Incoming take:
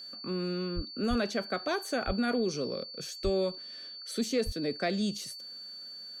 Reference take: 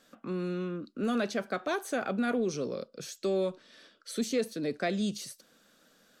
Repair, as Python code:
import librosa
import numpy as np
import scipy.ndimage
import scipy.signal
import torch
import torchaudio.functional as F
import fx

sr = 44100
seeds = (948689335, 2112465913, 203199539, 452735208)

y = fx.notch(x, sr, hz=4500.0, q=30.0)
y = fx.fix_deplosive(y, sr, at_s=(0.75, 1.09, 2.06, 3.23, 4.45))